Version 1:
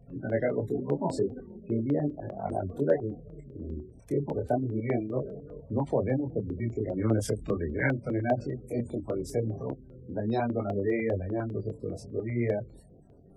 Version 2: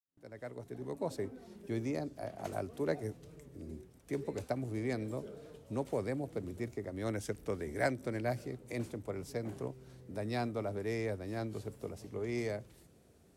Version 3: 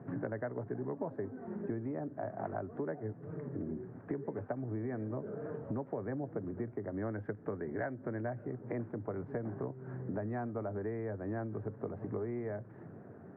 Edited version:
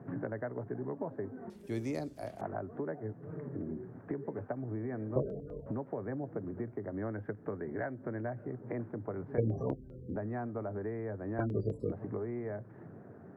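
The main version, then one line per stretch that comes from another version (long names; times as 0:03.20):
3
0:01.50–0:02.41: punch in from 2
0:05.16–0:05.66: punch in from 1
0:09.38–0:10.16: punch in from 1
0:11.39–0:11.92: punch in from 1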